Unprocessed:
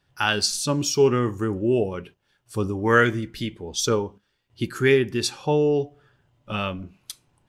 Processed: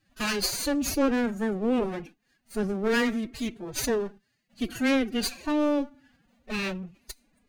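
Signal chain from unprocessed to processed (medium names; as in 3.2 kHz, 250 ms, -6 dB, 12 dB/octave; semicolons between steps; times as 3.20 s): comb filter that takes the minimum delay 0.46 ms; saturation -18.5 dBFS, distortion -12 dB; formant-preserving pitch shift +12 st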